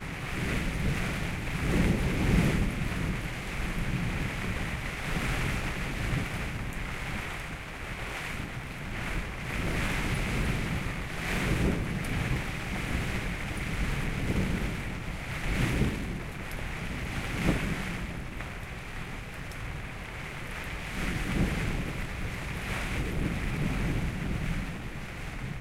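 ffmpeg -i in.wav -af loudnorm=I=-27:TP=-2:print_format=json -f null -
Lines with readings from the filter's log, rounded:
"input_i" : "-32.6",
"input_tp" : "-11.5",
"input_lra" : "4.8",
"input_thresh" : "-42.6",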